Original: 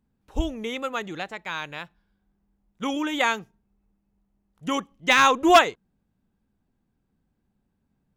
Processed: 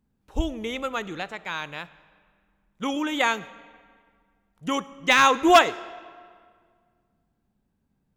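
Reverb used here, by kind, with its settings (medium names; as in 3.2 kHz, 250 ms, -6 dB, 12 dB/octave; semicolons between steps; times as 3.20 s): algorithmic reverb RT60 1.9 s, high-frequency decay 0.75×, pre-delay 10 ms, DRR 17 dB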